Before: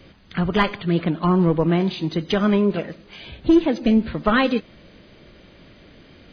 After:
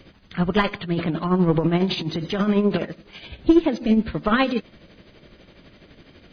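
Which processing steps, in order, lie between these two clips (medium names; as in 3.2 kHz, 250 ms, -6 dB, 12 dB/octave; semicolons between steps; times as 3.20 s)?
0.81–2.85 s: transient shaper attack -8 dB, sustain +7 dB; tremolo 12 Hz, depth 58%; trim +1.5 dB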